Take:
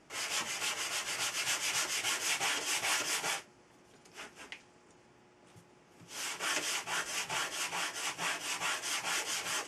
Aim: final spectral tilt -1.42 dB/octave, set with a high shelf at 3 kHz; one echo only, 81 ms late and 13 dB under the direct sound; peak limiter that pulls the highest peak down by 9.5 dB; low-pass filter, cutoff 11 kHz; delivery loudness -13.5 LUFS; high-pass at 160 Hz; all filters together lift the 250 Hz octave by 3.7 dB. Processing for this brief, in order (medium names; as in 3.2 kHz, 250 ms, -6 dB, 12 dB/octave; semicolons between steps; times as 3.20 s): high-pass 160 Hz; low-pass 11 kHz; peaking EQ 250 Hz +6 dB; treble shelf 3 kHz +3 dB; peak limiter -27 dBFS; delay 81 ms -13 dB; trim +21.5 dB